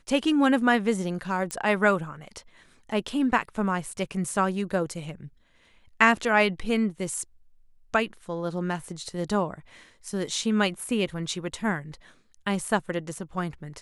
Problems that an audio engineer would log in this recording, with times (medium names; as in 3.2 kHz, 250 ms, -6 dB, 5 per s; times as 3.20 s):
1.51 s: pop -15 dBFS